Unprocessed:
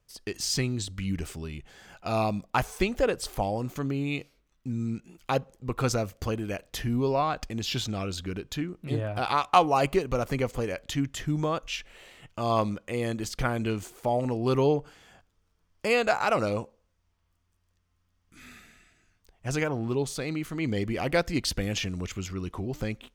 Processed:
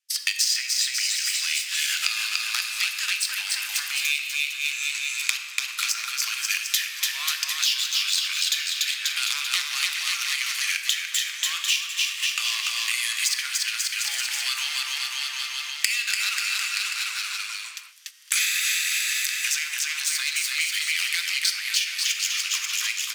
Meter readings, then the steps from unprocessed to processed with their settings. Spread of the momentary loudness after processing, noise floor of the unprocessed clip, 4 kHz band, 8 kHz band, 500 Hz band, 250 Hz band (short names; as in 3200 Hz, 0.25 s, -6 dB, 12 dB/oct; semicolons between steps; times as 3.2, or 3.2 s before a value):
4 LU, -73 dBFS, +15.0 dB, +16.0 dB, under -35 dB, under -40 dB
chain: one-sided fold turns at -17 dBFS; recorder AGC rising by 24 dB/s; downsampling 32000 Hz; sample leveller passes 2; Bessel high-pass 2900 Hz, order 6; shoebox room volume 750 m³, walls mixed, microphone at 0.85 m; gate -54 dBFS, range -25 dB; bouncing-ball echo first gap 0.29 s, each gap 0.85×, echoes 5; three-band squash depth 100%